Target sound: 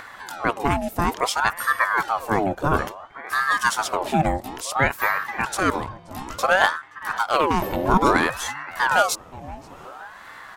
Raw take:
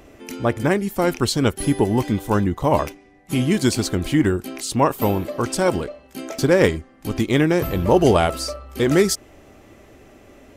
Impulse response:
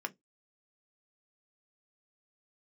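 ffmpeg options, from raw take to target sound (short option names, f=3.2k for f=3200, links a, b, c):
-filter_complex "[0:a]asplit=2[a][b];[b]adelay=526,lowpass=f=1.2k:p=1,volume=-18dB,asplit=2[c][d];[d]adelay=526,lowpass=f=1.2k:p=1,volume=0.44,asplit=2[e][f];[f]adelay=526,lowpass=f=1.2k:p=1,volume=0.44,asplit=2[g][h];[h]adelay=526,lowpass=f=1.2k:p=1,volume=0.44[i];[a][c][e][g][i]amix=inputs=5:normalize=0,acompressor=mode=upward:threshold=-29dB:ratio=2.5,aeval=exprs='val(0)*sin(2*PI*950*n/s+950*0.55/0.58*sin(2*PI*0.58*n/s))':c=same"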